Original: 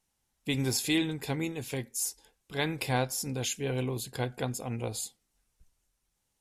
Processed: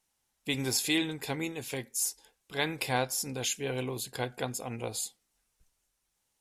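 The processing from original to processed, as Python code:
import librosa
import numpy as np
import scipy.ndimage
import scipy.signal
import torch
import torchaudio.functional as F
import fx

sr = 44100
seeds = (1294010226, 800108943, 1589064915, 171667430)

y = fx.low_shelf(x, sr, hz=270.0, db=-8.5)
y = y * 10.0 ** (1.5 / 20.0)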